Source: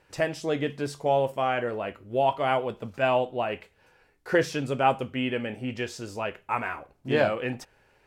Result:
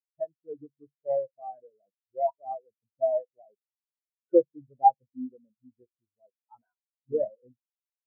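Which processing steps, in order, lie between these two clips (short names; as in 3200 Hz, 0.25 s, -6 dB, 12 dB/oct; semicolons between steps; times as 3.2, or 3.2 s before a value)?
half-waves squared off; spectral expander 4:1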